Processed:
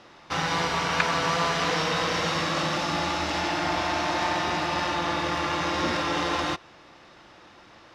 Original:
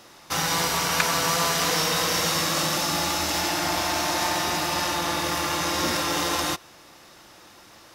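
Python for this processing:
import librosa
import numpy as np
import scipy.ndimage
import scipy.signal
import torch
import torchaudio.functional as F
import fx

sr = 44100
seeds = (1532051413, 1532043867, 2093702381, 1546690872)

y = scipy.signal.sosfilt(scipy.signal.butter(2, 3500.0, 'lowpass', fs=sr, output='sos'), x)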